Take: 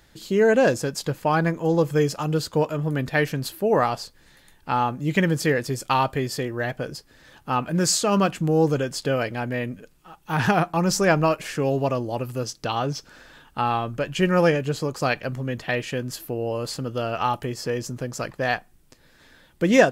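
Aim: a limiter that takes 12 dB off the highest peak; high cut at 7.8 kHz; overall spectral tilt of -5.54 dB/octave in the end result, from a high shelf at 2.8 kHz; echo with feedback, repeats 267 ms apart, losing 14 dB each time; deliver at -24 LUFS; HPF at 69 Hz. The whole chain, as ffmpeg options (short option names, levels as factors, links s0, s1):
-af "highpass=69,lowpass=7800,highshelf=f=2800:g=-4.5,alimiter=limit=0.178:level=0:latency=1,aecho=1:1:267|534:0.2|0.0399,volume=1.33"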